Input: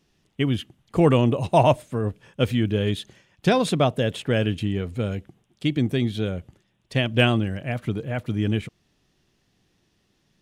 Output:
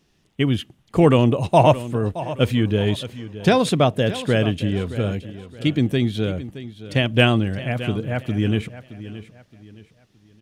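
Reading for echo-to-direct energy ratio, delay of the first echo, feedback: -14.0 dB, 0.62 s, 34%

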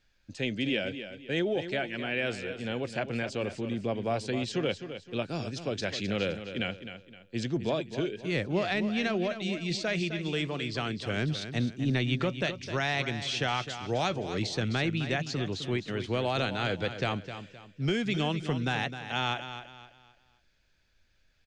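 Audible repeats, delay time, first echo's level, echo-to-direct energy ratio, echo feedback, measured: 3, 0.259 s, -10.5 dB, -10.0 dB, 34%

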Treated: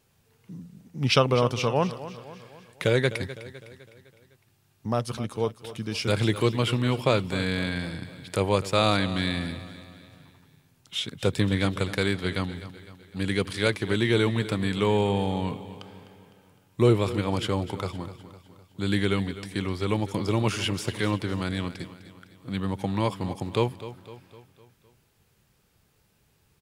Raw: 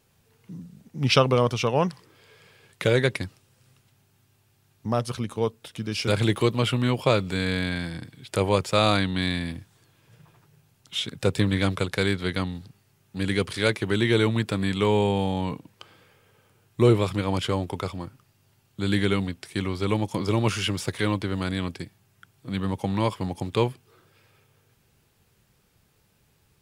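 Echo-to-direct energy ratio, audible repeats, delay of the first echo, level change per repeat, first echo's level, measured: -13.0 dB, 4, 0.254 s, -6.0 dB, -14.5 dB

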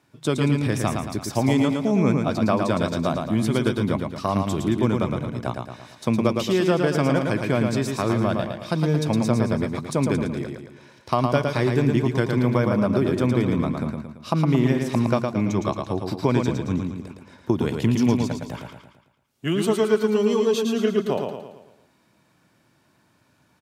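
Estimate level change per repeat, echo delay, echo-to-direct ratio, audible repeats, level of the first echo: -6.5 dB, 0.112 s, -3.5 dB, 5, -4.5 dB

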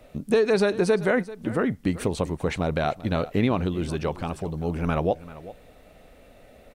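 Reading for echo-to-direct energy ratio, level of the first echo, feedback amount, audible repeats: -17.0 dB, -17.0 dB, no steady repeat, 1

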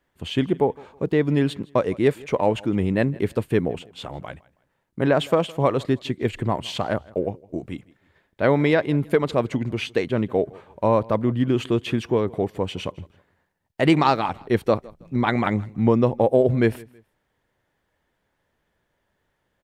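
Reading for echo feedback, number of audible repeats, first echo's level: 31%, 2, -23.5 dB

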